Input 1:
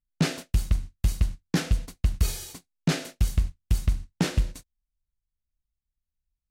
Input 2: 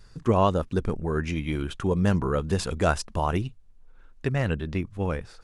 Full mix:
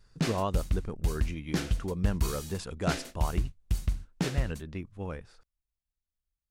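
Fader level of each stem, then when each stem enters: -5.5 dB, -9.5 dB; 0.00 s, 0.00 s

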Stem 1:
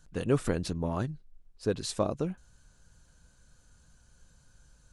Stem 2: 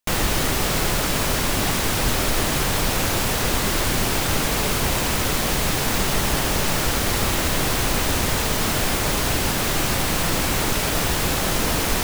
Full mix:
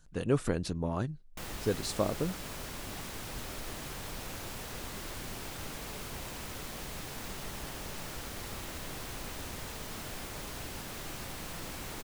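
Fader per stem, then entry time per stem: -1.5 dB, -20.0 dB; 0.00 s, 1.30 s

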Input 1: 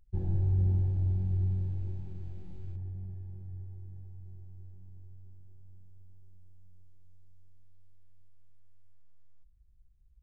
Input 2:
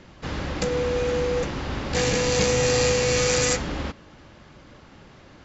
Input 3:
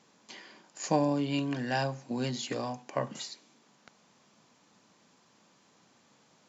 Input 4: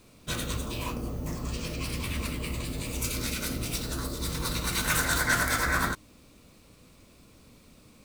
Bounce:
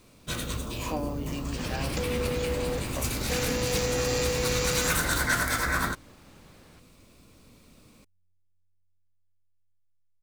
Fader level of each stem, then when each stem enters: -18.5 dB, -7.0 dB, -6.5 dB, -0.5 dB; 1.50 s, 1.35 s, 0.00 s, 0.00 s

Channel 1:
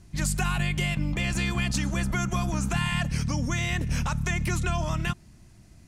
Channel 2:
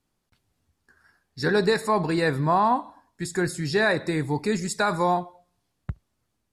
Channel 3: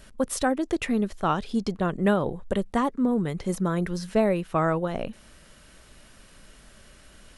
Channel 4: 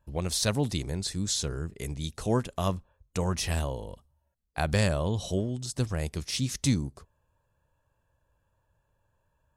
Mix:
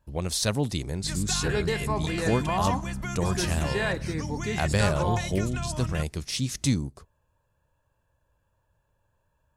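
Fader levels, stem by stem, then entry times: -6.0 dB, -7.5 dB, mute, +1.0 dB; 0.90 s, 0.00 s, mute, 0.00 s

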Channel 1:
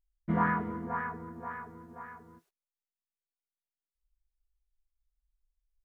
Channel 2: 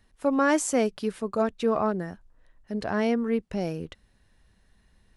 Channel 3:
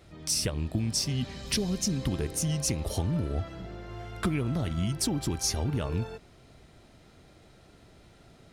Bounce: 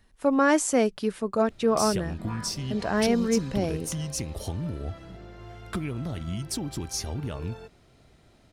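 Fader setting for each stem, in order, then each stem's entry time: -12.0 dB, +1.5 dB, -3.0 dB; 1.90 s, 0.00 s, 1.50 s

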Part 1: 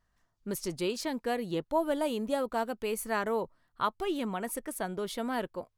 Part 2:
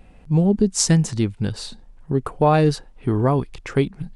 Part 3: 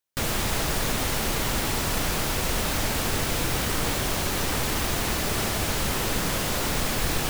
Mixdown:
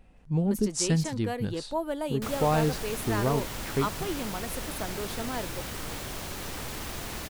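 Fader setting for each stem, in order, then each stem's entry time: -2.0 dB, -9.0 dB, -10.5 dB; 0.00 s, 0.00 s, 2.05 s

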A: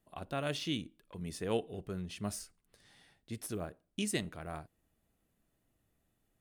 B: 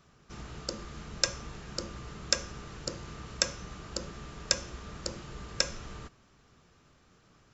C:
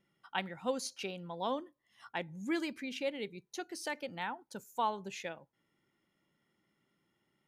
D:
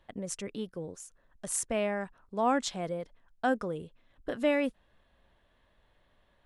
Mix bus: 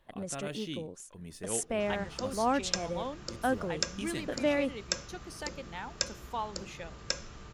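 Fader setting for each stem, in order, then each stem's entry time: -4.5 dB, -4.5 dB, -3.0 dB, -1.5 dB; 0.00 s, 1.50 s, 1.55 s, 0.00 s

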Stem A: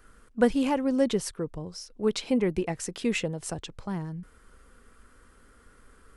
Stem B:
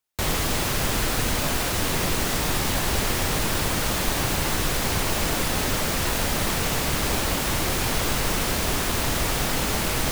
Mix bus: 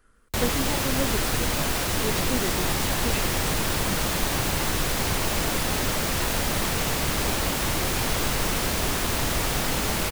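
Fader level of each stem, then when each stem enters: -6.0 dB, -1.0 dB; 0.00 s, 0.15 s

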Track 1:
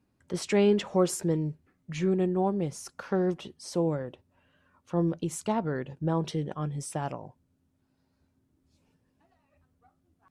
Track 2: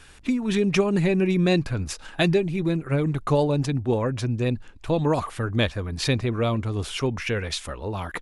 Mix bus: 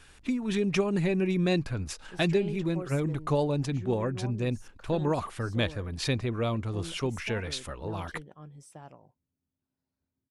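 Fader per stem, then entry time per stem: -15.0 dB, -5.5 dB; 1.80 s, 0.00 s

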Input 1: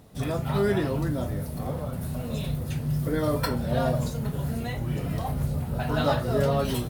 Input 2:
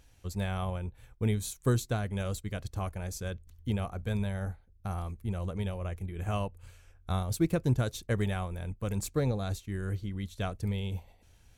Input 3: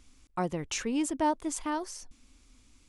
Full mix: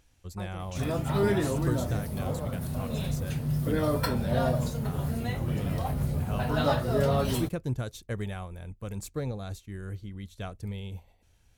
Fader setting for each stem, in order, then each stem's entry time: -1.5 dB, -4.0 dB, -13.0 dB; 0.60 s, 0.00 s, 0.00 s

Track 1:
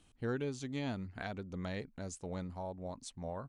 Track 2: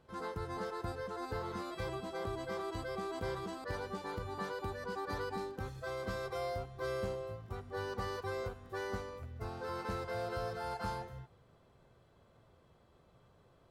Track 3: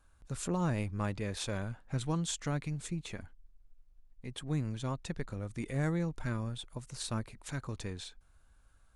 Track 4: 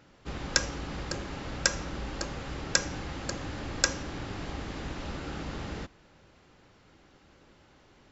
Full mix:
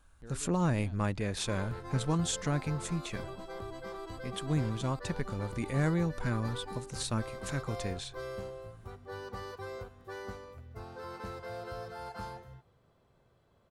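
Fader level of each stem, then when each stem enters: -14.0 dB, -3.0 dB, +3.0 dB, mute; 0.00 s, 1.35 s, 0.00 s, mute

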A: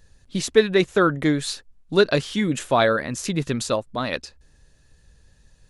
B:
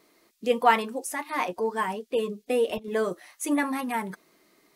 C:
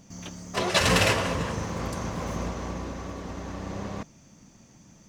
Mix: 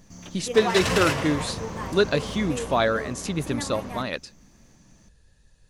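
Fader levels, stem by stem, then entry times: -3.5 dB, -9.5 dB, -3.0 dB; 0.00 s, 0.00 s, 0.00 s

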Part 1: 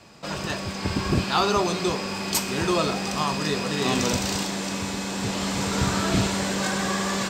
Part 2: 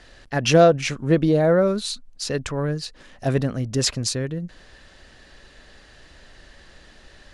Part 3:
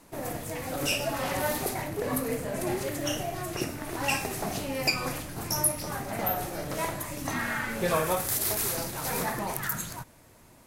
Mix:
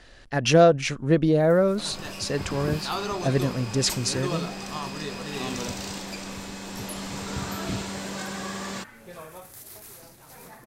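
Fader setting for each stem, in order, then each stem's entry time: -8.0 dB, -2.0 dB, -16.0 dB; 1.55 s, 0.00 s, 1.25 s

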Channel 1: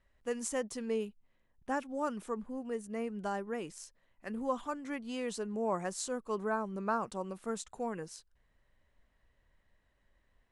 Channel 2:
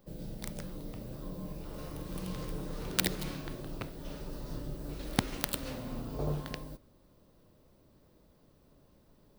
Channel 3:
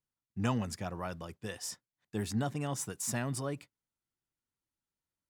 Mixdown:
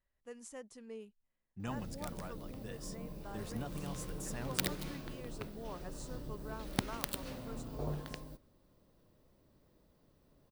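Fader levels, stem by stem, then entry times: -13.5 dB, -5.0 dB, -10.0 dB; 0.00 s, 1.60 s, 1.20 s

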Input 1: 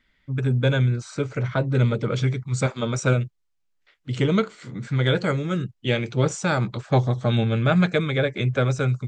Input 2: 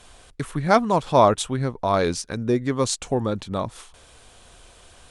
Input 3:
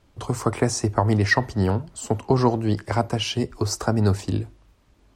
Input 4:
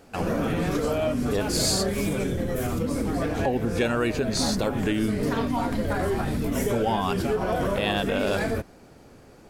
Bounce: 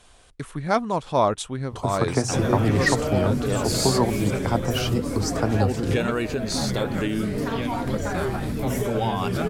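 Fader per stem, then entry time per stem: -9.5 dB, -4.5 dB, -2.5 dB, -1.0 dB; 1.70 s, 0.00 s, 1.55 s, 2.15 s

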